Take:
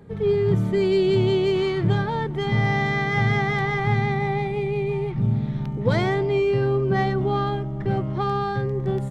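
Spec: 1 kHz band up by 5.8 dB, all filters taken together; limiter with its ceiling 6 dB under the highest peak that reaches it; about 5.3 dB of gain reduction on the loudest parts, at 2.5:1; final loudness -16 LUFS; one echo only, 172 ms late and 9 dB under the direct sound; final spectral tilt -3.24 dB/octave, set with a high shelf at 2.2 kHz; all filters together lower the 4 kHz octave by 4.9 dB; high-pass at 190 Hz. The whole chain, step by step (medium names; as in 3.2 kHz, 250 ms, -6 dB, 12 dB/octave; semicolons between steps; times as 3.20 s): high-pass 190 Hz; peaking EQ 1 kHz +9 dB; treble shelf 2.2 kHz -4 dB; peaking EQ 4 kHz -3.5 dB; compression 2.5:1, threshold -24 dBFS; peak limiter -20.5 dBFS; delay 172 ms -9 dB; trim +12 dB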